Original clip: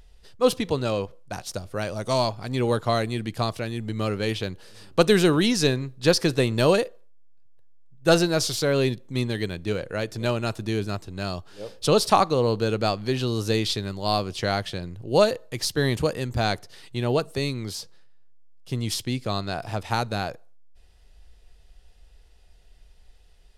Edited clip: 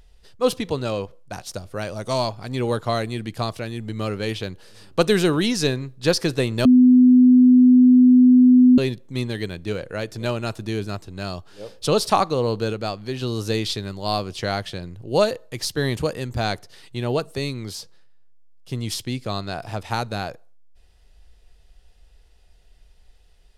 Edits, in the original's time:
6.65–8.78 bleep 251 Hz -8.5 dBFS
12.73–13.22 gain -3.5 dB

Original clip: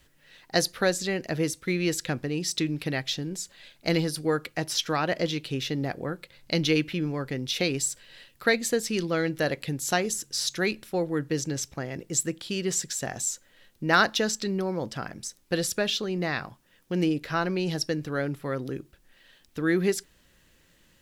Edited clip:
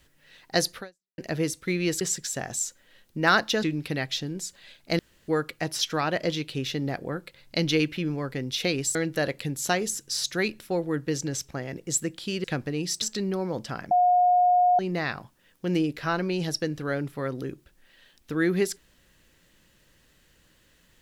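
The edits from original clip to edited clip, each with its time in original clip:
0.78–1.18 fade out exponential
2.01–2.59 swap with 12.67–14.29
3.95–4.24 room tone
7.91–9.18 cut
15.18–16.06 bleep 719 Hz -16.5 dBFS

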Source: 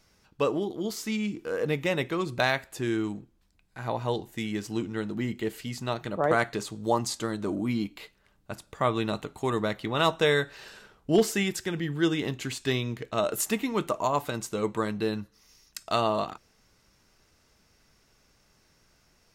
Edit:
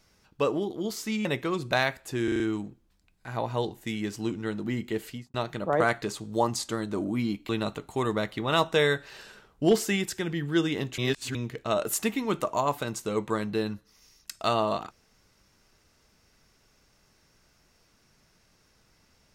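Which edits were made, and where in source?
1.25–1.92 cut
2.91 stutter 0.04 s, 5 plays
5.58–5.85 studio fade out
8–8.96 cut
12.45–12.82 reverse

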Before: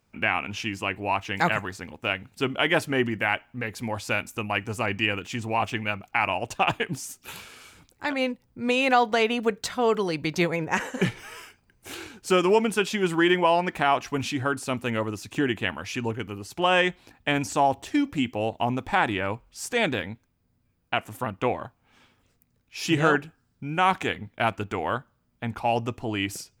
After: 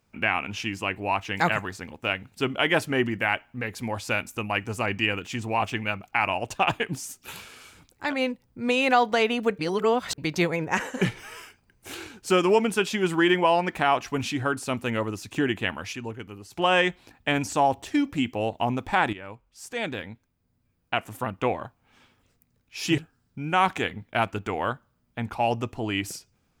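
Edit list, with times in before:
9.59–10.18 reverse
15.93–16.53 gain -6 dB
19.13–21.03 fade in, from -14 dB
22.98–23.23 cut

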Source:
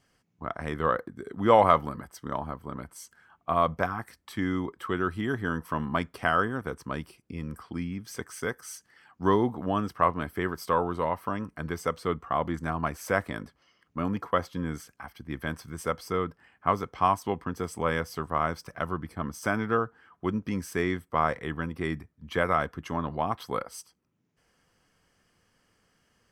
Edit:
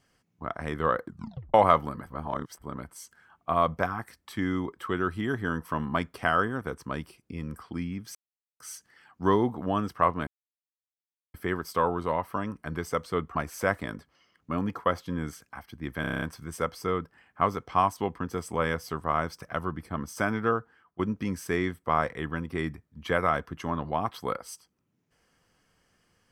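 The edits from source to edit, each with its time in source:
1.06 tape stop 0.48 s
2.07–2.62 reverse
8.15–8.6 mute
10.27 insert silence 1.07 s
12.28–12.82 cut
15.48 stutter 0.03 s, 8 plays
19.84–20.25 fade out, to -15.5 dB

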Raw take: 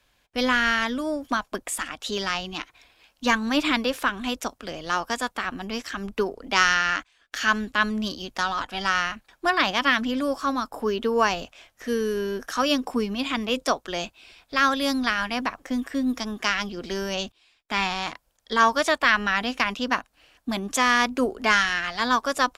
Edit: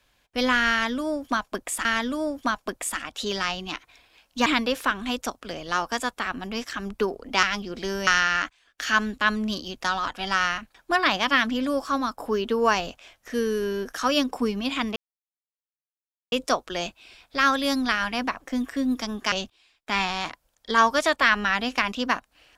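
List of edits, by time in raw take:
0.71–1.85 loop, 2 plays
3.32–3.64 cut
13.5 insert silence 1.36 s
16.5–17.14 move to 6.61

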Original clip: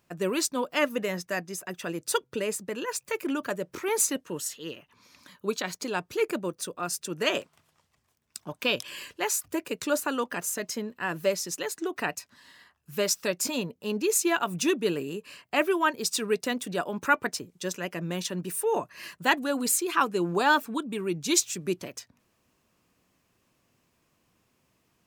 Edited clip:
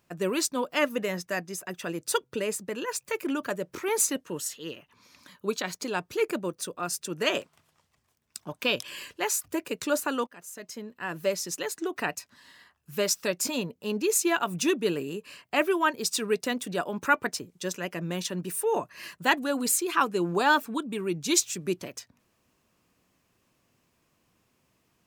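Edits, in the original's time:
10.27–11.49 fade in, from -21 dB

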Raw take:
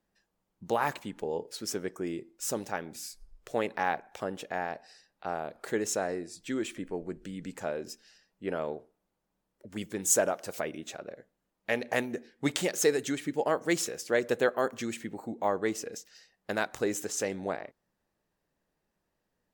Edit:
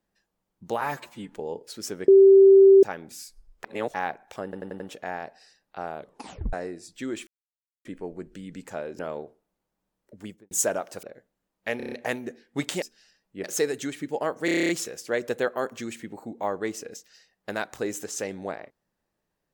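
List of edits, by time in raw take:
0.81–1.13 stretch 1.5×
1.92–2.67 bleep 389 Hz -9.5 dBFS
3.48–3.78 reverse
4.28 stutter 0.09 s, 5 plays
5.47 tape stop 0.54 s
6.75 insert silence 0.58 s
7.89–8.51 move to 12.69
9.68–10.03 studio fade out
10.55–11.05 cut
11.79 stutter 0.03 s, 6 plays
13.7 stutter 0.03 s, 9 plays

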